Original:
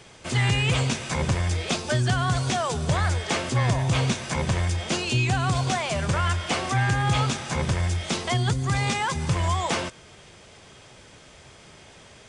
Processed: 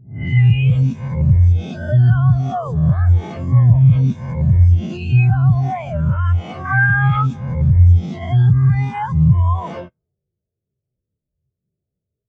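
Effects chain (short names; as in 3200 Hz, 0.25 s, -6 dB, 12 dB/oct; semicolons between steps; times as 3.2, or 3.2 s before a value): spectral swells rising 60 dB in 1.17 s; low-pass opened by the level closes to 450 Hz, open at -18.5 dBFS; 6.65–7.23 bell 1600 Hz +9 dB 1.4 oct; in parallel at -8 dB: wrapped overs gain 12 dB; on the sum: maximiser +13.5 dB; spectral expander 2.5:1; gain -1 dB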